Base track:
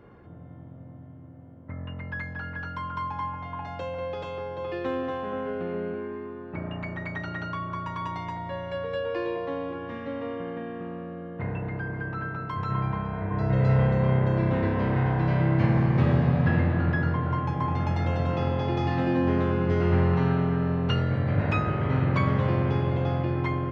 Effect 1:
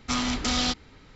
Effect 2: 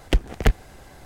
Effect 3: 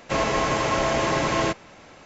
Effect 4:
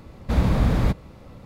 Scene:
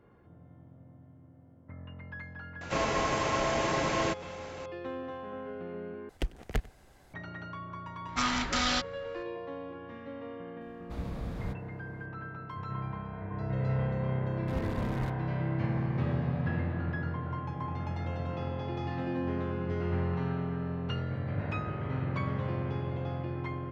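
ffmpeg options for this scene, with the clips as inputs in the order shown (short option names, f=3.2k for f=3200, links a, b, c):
-filter_complex "[4:a]asplit=2[a][b];[0:a]volume=-9dB[c];[3:a]acompressor=mode=upward:threshold=-29dB:ratio=2.5:attack=3.2:release=140:knee=2.83:detection=peak[d];[2:a]aecho=1:1:96:0.075[e];[1:a]equalizer=f=1.5k:w=1:g=9.5[f];[b]acrusher=bits=2:mix=0:aa=0.5[g];[c]asplit=2[h][i];[h]atrim=end=6.094[j];[e]atrim=end=1.05,asetpts=PTS-STARTPTS,volume=-13dB[k];[i]atrim=start=7.136[l];[d]atrim=end=2.05,asetpts=PTS-STARTPTS,volume=-6.5dB,afade=t=in:d=0.004:c=hsin,afade=t=out:st=2.046:d=0.004:c=hsin,adelay=2610[m];[f]atrim=end=1.15,asetpts=PTS-STARTPTS,volume=-6dB,afade=t=in:d=0.004:c=hsin,afade=t=out:st=1.146:d=0.004:c=hsin,adelay=8080[n];[a]atrim=end=1.45,asetpts=PTS-STARTPTS,volume=-18dB,afade=t=in:d=0.004:c=hsin,afade=t=out:st=1.446:d=0.004:c=hsin,adelay=10610[o];[g]atrim=end=1.45,asetpts=PTS-STARTPTS,volume=-18dB,afade=t=in:d=0.004:c=hsin,afade=t=out:st=1.446:d=0.004:c=hsin,adelay=14180[p];[j][k]acrossfade=d=0.004:c1=hsin:c2=hsin[q];[q][l]acrossfade=d=0.004:c1=hsin:c2=hsin[r];[r][m][n][o][p]amix=inputs=5:normalize=0"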